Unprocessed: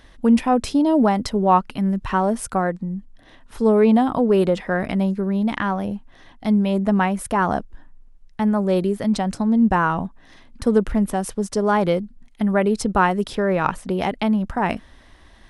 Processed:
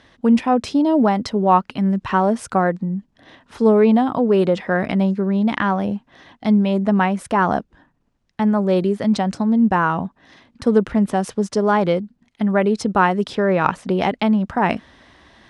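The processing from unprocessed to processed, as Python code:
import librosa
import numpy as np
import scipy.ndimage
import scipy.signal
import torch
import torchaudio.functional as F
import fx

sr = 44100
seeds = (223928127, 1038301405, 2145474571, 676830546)

p1 = fx.rider(x, sr, range_db=4, speed_s=0.5)
p2 = x + F.gain(torch.from_numpy(p1), 1.0).numpy()
p3 = fx.bandpass_edges(p2, sr, low_hz=100.0, high_hz=6400.0)
y = F.gain(torch.from_numpy(p3), -4.5).numpy()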